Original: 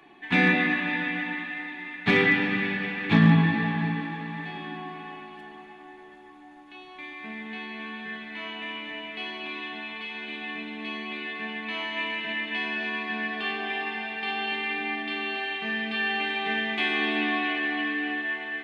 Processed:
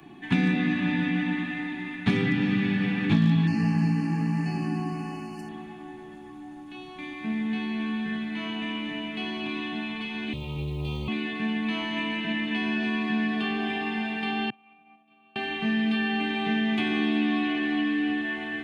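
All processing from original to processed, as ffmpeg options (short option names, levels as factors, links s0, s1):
-filter_complex "[0:a]asettb=1/sr,asplit=3[s0][s1][s2];[s0]atrim=end=3.474[s3];[s1]atrim=start=3.47:end=5.49,asetpts=PTS-STARTPTS,afade=t=in:d=0.004:c=qsin,afade=t=out:st=2.016:d=0.004:c=qsin,asuperstop=centerf=3600:order=12:qfactor=2.6,highshelf=f=3200:t=q:w=1.5:g=9.5[s4];[s2]atrim=start=5.486[s5];[s3][s4]acrossfade=d=0.004:c1=hsin:c2=qsin[s6];[s6][s5]acrossfade=d=0.004:c1=qsin:c2=hsin,asettb=1/sr,asplit=3[s7][s8][s9];[s7]atrim=end=10.334[s10];[s8]atrim=start=10.33:end=11.08,asetpts=PTS-STARTPTS,afade=t=in:d=0.004:c=qsin,afade=t=out:st=0.746:d=0.004:c=qsin,asuperstop=centerf=1700:order=4:qfactor=1,acrusher=bits=9:mode=log:mix=0:aa=0.000001,aeval=exprs='val(0)*sin(2*PI*150*n/s)':c=same[s11];[s9]atrim=start=11.076[s12];[s10][s11]acrossfade=d=0.004:c1=hsin:c2=qsin[s13];[s13][s12]acrossfade=d=0.004:c1=qsin:c2=hsin,asettb=1/sr,asplit=3[s14][s15][s16];[s14]atrim=end=14.504[s17];[s15]atrim=start=14.5:end=15.36,asetpts=PTS-STARTPTS,afade=t=in:d=0.004:c=qsin,afade=t=out:st=0.856:d=0.004:c=qsin,agate=range=0.0224:threshold=0.1:ratio=3:release=100:detection=peak,asplit=3[s18][s19][s20];[s18]bandpass=f=730:t=q:w=8,volume=1[s21];[s19]bandpass=f=1090:t=q:w=8,volume=0.501[s22];[s20]bandpass=f=2440:t=q:w=8,volume=0.355[s23];[s21][s22][s23]amix=inputs=3:normalize=0,lowshelf=f=230:t=q:w=1.5:g=13[s24];[s16]atrim=start=15.356[s25];[s17][s24]acrossfade=d=0.004:c1=hsin:c2=qsin[s26];[s26][s25]acrossfade=d=0.004:c1=qsin:c2=hsin,equalizer=f=125:t=o:w=1:g=9,equalizer=f=250:t=o:w=1:g=3,equalizer=f=500:t=o:w=1:g=-9,equalizer=f=1000:t=o:w=1:g=-5,equalizer=f=2000:t=o:w=1:g=-9,equalizer=f=4000:t=o:w=1:g=-5,acrossover=split=250|2700[s27][s28][s29];[s27]acompressor=threshold=0.0158:ratio=4[s30];[s28]acompressor=threshold=0.0141:ratio=4[s31];[s29]acompressor=threshold=0.00398:ratio=4[s32];[s30][s31][s32]amix=inputs=3:normalize=0,volume=2.82"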